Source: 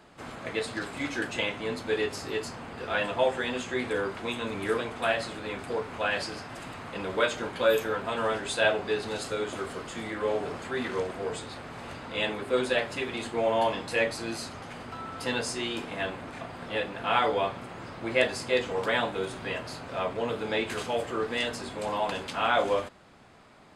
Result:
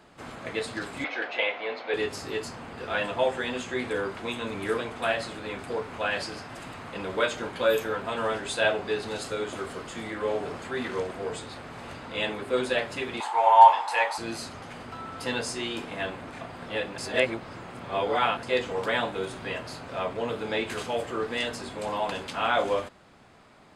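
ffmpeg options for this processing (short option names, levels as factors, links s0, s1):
-filter_complex "[0:a]asettb=1/sr,asplit=3[s0][s1][s2];[s0]atrim=end=1.044[s3];[s1]atrim=start=1.04:end=1.94,asetpts=PTS-STARTPTS,afade=t=in:d=0.004:c=qsin,afade=t=out:st=0.896:d=0.004:c=qsin,highpass=490,equalizer=f=510:t=q:w=4:g=6,equalizer=f=720:t=q:w=4:g=7,equalizer=f=2200:t=q:w=4:g=6,lowpass=f=4300:w=0.5412,lowpass=f=4300:w=1.3066[s4];[s2]atrim=start=1.936[s5];[s3][s4]acrossfade=d=0.004:c1=hsin:c2=qsin[s6];[s6][s5]acrossfade=d=0.004:c1=qsin:c2=hsin,asettb=1/sr,asplit=3[s7][s8][s9];[s7]atrim=end=13.204[s10];[s8]atrim=start=13.2:end=14.18,asetpts=PTS-STARTPTS,afade=t=in:d=0.004:c=qsin,afade=t=out:st=0.976:d=0.004:c=qsin,highpass=f=870:t=q:w=10[s11];[s9]atrim=start=14.176[s12];[s10][s11]acrossfade=d=0.004:c1=hsin:c2=qsin[s13];[s13][s12]acrossfade=d=0.004:c1=qsin:c2=hsin,asplit=3[s14][s15][s16];[s14]atrim=end=16.982[s17];[s15]atrim=start=16.978:end=18.432,asetpts=PTS-STARTPTS,areverse[s18];[s16]atrim=start=18.428[s19];[s17][s18]acrossfade=d=0.004:c1=hsin:c2=hsin[s20];[s20][s19]acrossfade=d=0.004:c1=hsin:c2=hsin"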